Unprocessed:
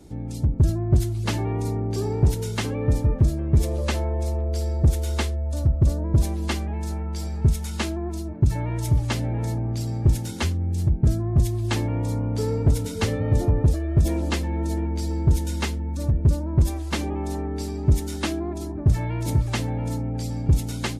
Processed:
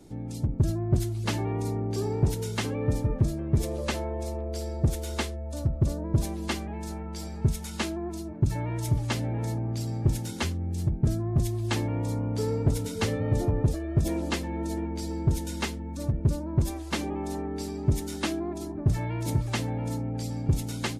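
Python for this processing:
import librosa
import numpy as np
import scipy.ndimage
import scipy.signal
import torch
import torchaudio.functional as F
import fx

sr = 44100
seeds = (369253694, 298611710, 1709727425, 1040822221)

y = fx.peak_eq(x, sr, hz=64.0, db=-9.5, octaves=0.75)
y = y * 10.0 ** (-2.5 / 20.0)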